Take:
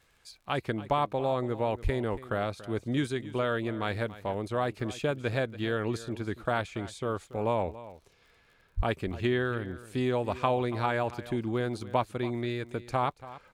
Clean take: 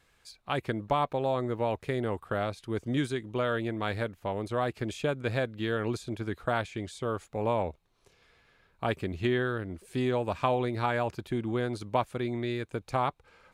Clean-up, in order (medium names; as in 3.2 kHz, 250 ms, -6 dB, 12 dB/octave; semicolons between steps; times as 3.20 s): de-click; de-plosive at 1.83/8.76 s; inverse comb 283 ms -16.5 dB